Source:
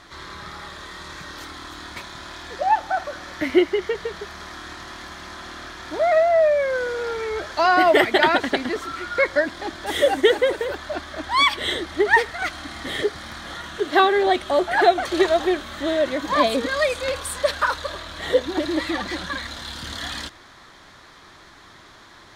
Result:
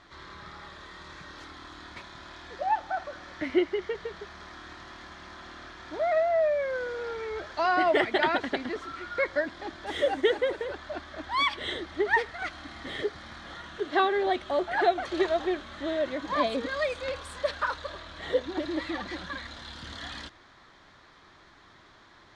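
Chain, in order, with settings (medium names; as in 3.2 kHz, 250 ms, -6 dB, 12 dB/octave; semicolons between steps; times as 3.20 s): distance through air 85 m; trim -7.5 dB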